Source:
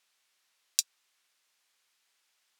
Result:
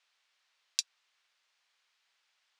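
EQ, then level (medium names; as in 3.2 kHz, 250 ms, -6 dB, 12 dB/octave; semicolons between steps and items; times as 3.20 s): band-pass 540–4900 Hz; +1.0 dB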